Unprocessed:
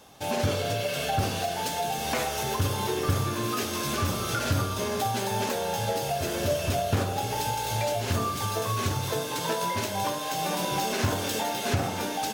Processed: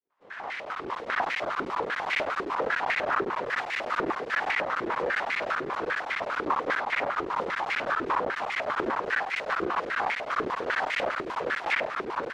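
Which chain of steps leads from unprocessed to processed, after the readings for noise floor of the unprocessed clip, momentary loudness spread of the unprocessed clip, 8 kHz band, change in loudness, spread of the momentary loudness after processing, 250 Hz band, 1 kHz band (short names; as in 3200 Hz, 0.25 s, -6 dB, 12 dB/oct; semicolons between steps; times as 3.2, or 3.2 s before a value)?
-32 dBFS, 2 LU, under -20 dB, -1.0 dB, 3 LU, -5.5 dB, +0.5 dB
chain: opening faded in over 1.29 s; spectral gate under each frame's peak -10 dB weak; air absorption 95 m; AGC gain up to 4 dB; bell 730 Hz +11.5 dB 2.9 oct; full-wave rectifier; crackling interface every 0.10 s, samples 512, zero, from 0.65; maximiser +11.5 dB; stepped band-pass 10 Hz 380–2100 Hz; gain -2 dB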